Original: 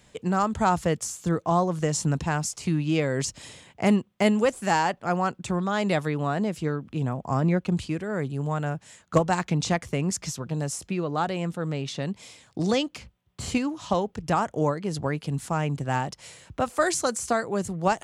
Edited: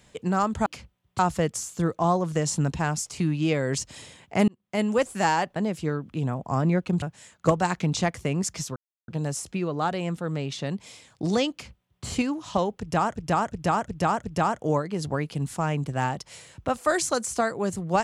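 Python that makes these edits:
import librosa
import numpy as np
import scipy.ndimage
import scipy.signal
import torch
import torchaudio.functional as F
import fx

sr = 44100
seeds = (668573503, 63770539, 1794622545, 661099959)

y = fx.edit(x, sr, fx.fade_in_span(start_s=3.95, length_s=0.53),
    fx.cut(start_s=5.03, length_s=1.32),
    fx.cut(start_s=7.81, length_s=0.89),
    fx.insert_silence(at_s=10.44, length_s=0.32),
    fx.duplicate(start_s=12.88, length_s=0.53, to_s=0.66),
    fx.repeat(start_s=14.16, length_s=0.36, count=5), tone=tone)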